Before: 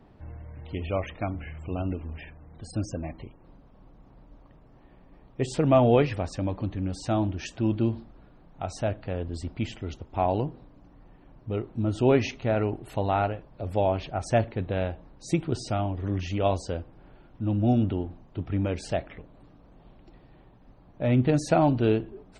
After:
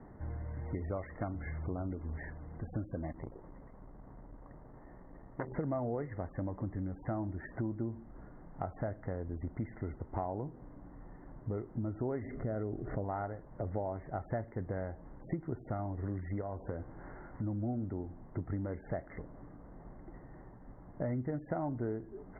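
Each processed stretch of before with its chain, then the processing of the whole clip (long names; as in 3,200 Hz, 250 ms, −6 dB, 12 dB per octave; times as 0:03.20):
0:03.12–0:05.52: echo through a band-pass that steps 119 ms, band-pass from 530 Hz, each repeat 0.7 octaves, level −3.5 dB + saturating transformer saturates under 1,600 Hz
0:12.22–0:13.04: low-pass filter 1,300 Hz + parametric band 890 Hz −13 dB 0.41 octaves + envelope flattener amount 50%
0:16.41–0:17.44: downward compressor 3 to 1, threshold −31 dBFS + double-tracking delay 19 ms −11 dB + one half of a high-frequency compander encoder only
whole clip: Chebyshev low-pass filter 2,100 Hz, order 10; downward compressor 6 to 1, threshold −37 dBFS; level +2.5 dB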